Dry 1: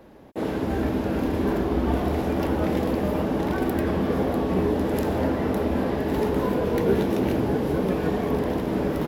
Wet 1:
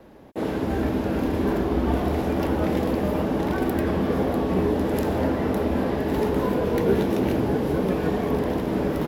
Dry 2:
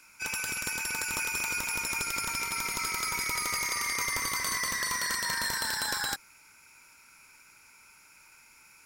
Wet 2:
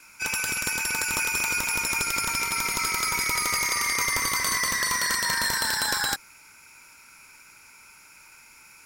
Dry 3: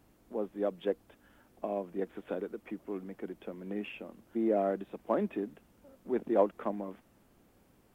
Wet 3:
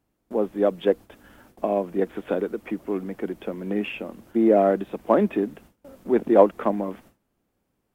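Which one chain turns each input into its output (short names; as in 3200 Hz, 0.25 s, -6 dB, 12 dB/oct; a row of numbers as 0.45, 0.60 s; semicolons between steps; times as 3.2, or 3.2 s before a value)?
gate with hold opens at -52 dBFS; match loudness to -24 LUFS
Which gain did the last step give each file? +0.5, +5.5, +11.5 dB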